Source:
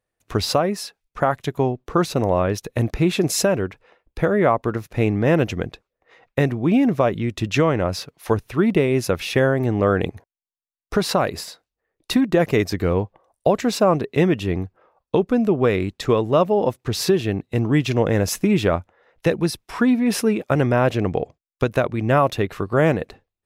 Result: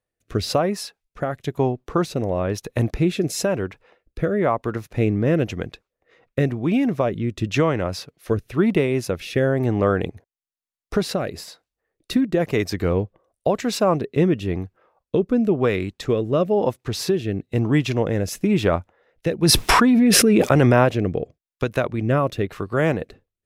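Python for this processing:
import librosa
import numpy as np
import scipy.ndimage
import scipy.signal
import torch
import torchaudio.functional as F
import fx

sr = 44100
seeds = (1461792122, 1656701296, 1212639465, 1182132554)

y = fx.rotary(x, sr, hz=1.0)
y = fx.env_flatten(y, sr, amount_pct=100, at=(19.42, 20.84), fade=0.02)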